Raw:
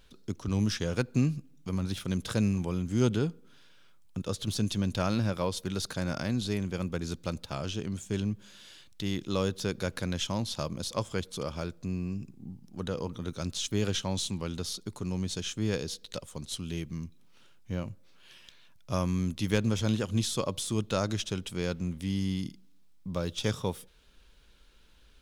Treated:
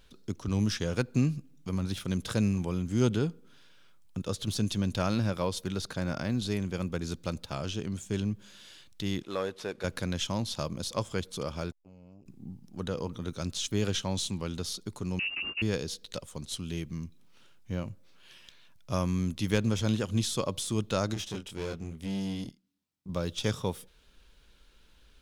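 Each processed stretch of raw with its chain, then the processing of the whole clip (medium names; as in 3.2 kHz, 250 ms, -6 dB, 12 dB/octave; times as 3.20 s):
5.72–6.42 s: companded quantiser 8-bit + treble shelf 4.7 kHz -6.5 dB
9.22–9.84 s: CVSD coder 64 kbps + tone controls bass -15 dB, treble -11 dB
11.71–12.26 s: compression, threshold -48 dBFS + transformer saturation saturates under 370 Hz
15.19–15.62 s: bass shelf 190 Hz +8.5 dB + hard clipper -30 dBFS + frequency inversion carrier 2.8 kHz
21.14–23.09 s: doubling 25 ms -2.5 dB + valve stage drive 29 dB, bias 0.45 + upward expansion, over -54 dBFS
whole clip: none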